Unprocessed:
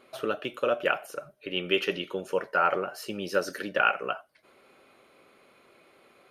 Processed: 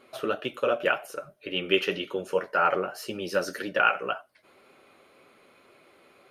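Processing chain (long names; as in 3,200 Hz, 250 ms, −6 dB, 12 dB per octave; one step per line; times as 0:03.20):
flanger 1.9 Hz, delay 6.7 ms, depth 5.9 ms, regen −36%
level +5 dB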